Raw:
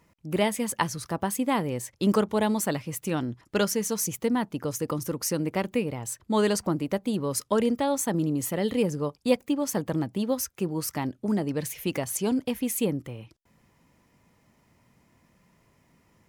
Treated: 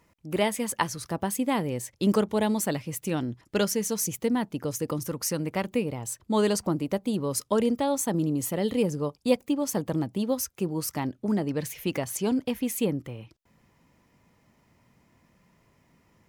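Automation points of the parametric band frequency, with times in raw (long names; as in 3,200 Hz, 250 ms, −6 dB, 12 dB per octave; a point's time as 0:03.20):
parametric band −3.5 dB 1 octave
160 Hz
from 0:01.02 1,200 Hz
from 0:05.06 340 Hz
from 0:05.66 1,700 Hz
from 0:10.99 10,000 Hz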